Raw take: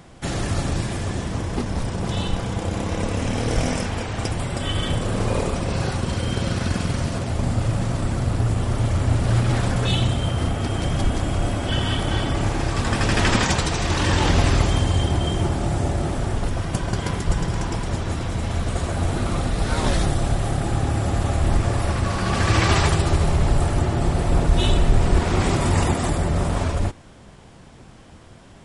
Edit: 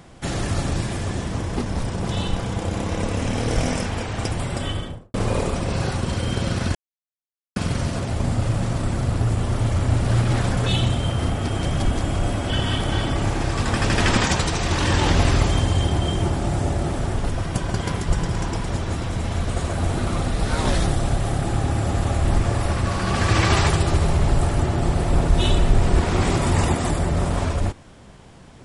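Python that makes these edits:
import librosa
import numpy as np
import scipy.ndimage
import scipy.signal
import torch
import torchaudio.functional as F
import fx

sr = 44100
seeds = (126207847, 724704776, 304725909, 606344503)

y = fx.studio_fade_out(x, sr, start_s=4.56, length_s=0.58)
y = fx.edit(y, sr, fx.insert_silence(at_s=6.75, length_s=0.81), tone=tone)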